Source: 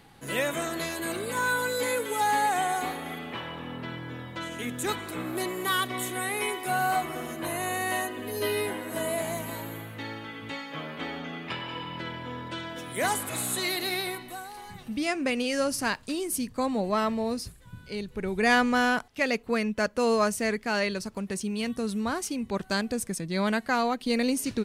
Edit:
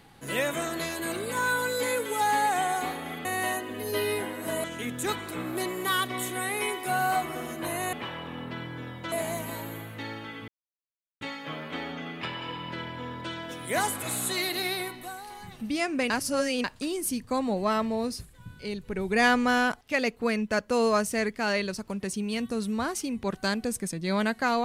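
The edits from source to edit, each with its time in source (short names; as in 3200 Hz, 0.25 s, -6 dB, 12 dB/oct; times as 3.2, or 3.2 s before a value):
3.25–4.44 swap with 7.73–9.12
10.48 insert silence 0.73 s
15.37–15.91 reverse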